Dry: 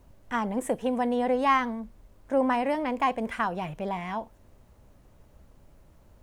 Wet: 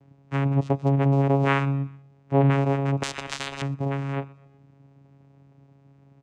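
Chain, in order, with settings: vocoder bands 4, saw 138 Hz; feedback delay 124 ms, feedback 45%, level -22 dB; 3.03–3.62 s: spectrum-flattening compressor 10:1; trim +5 dB

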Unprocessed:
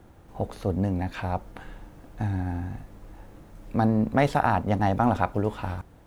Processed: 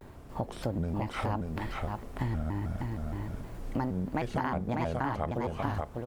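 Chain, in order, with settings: compression 6:1, threshold -32 dBFS, peak gain reduction 15.5 dB; delay 593 ms -3.5 dB; vibrato with a chosen wave square 3.2 Hz, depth 250 cents; trim +3 dB

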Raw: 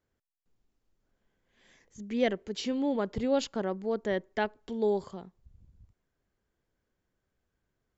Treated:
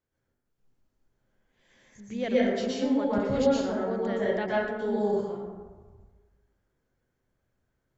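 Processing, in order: plate-style reverb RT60 1.4 s, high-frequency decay 0.4×, pre-delay 105 ms, DRR -7.5 dB; trim -5 dB

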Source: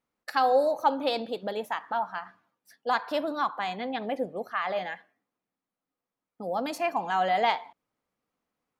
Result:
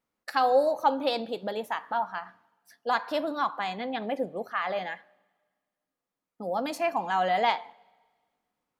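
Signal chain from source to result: wow and flutter 20 cents; two-slope reverb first 0.21 s, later 1.6 s, from -18 dB, DRR 17.5 dB

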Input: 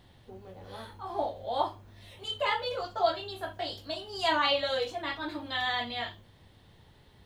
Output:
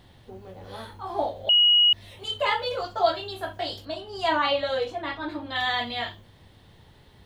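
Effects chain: 1.49–1.93 s: bleep 2.9 kHz -19 dBFS; 3.85–5.56 s: treble shelf 3.1 kHz -9.5 dB; trim +4.5 dB

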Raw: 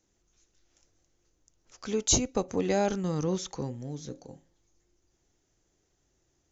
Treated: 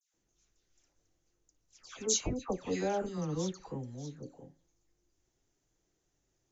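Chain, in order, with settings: flange 0.86 Hz, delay 6 ms, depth 1.8 ms, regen -62%; phase dispersion lows, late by 140 ms, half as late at 1.8 kHz; trim -1.5 dB

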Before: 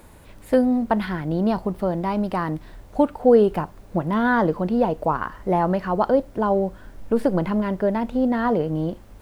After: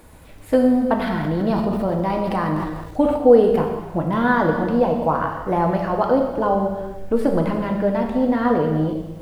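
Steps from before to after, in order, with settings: gated-style reverb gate 460 ms falling, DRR 1.5 dB; 0.97–3.18 s: transient shaper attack 0 dB, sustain +7 dB

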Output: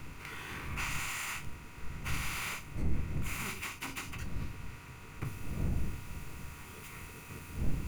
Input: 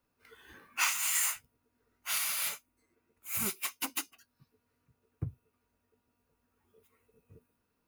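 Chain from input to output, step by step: spectral levelling over time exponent 0.4; wind noise 110 Hz -34 dBFS; peaking EQ 2.2 kHz +3.5 dB 0.51 oct; peak limiter -19.5 dBFS, peak gain reduction 7 dB; treble shelf 5.8 kHz -12 dB, from 5.25 s -4.5 dB; reverberation RT60 0.30 s, pre-delay 6 ms, DRR 8.5 dB; trim -5 dB

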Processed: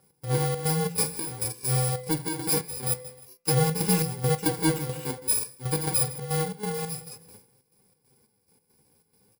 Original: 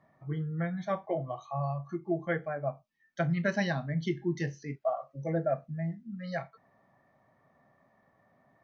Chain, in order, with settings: bit-reversed sample order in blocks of 64 samples; feedback delay 142 ms, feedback 34%, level -23.5 dB; speed mistake 48 kHz file played as 44.1 kHz; flange 0.51 Hz, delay 5 ms, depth 9 ms, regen +39%; gate with hold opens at -57 dBFS; trance gate "x.xxx.xx.xx.." 138 bpm -12 dB; power-law waveshaper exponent 0.7; peaking EQ 510 Hz +8.5 dB 1 oct; band-stop 1.3 kHz, Q 15; de-hum 168.9 Hz, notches 16; trim +6.5 dB

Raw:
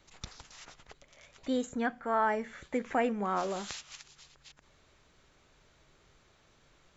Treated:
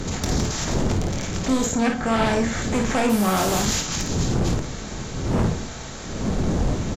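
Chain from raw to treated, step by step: spectral levelling over time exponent 0.6; wind noise 390 Hz -38 dBFS; tone controls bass +9 dB, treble +11 dB; in parallel at -12 dB: sine folder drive 15 dB, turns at -9 dBFS; 3.09–3.60 s: on the sum: modulation noise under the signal 13 dB; on a send: early reflections 23 ms -8.5 dB, 53 ms -6 dB; on the sum: trim -2 dB; Vorbis 48 kbps 44.1 kHz

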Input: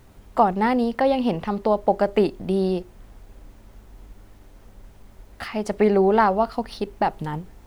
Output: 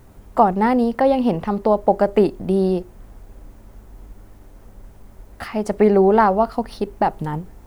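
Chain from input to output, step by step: peaking EQ 3.4 kHz -6.5 dB 1.9 oct; trim +4 dB

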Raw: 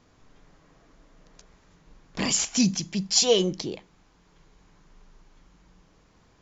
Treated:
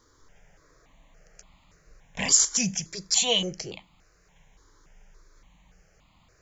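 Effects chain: treble shelf 2.5 kHz +9 dB; stepped phaser 3.5 Hz 710–1600 Hz

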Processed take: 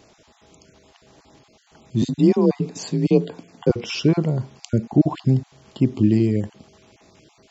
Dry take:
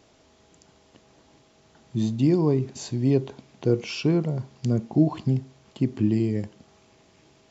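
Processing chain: random holes in the spectrogram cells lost 20%; 2.02–3.70 s: frequency shift +37 Hz; trim +5.5 dB

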